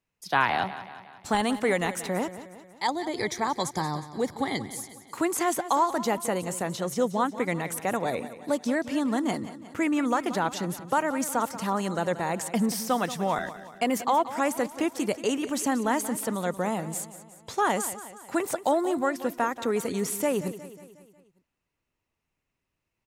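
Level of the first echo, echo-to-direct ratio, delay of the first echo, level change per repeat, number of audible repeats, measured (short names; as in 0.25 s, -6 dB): -14.0 dB, -12.5 dB, 0.181 s, -5.5 dB, 4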